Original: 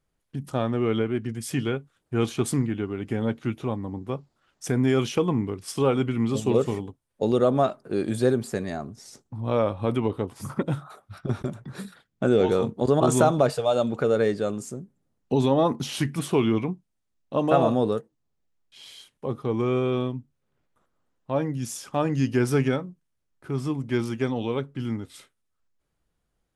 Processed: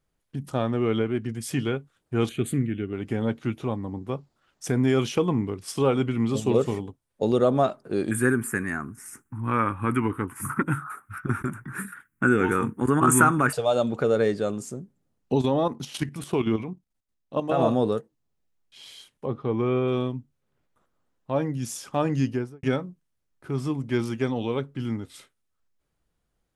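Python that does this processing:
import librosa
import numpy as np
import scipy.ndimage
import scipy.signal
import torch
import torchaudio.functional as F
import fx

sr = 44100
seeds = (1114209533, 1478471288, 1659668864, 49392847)

y = fx.fixed_phaser(x, sr, hz=2300.0, stages=4, at=(2.29, 2.93))
y = fx.curve_eq(y, sr, hz=(200.0, 300.0, 620.0, 920.0, 1500.0, 2600.0, 4100.0, 9400.0), db=(0, 4, -15, 2, 14, 3, -19, 12), at=(8.11, 13.53))
y = fx.level_steps(y, sr, step_db=11, at=(15.38, 17.6))
y = fx.lowpass(y, sr, hz=3300.0, slope=12, at=(19.26, 19.88))
y = fx.studio_fade_out(y, sr, start_s=22.16, length_s=0.47)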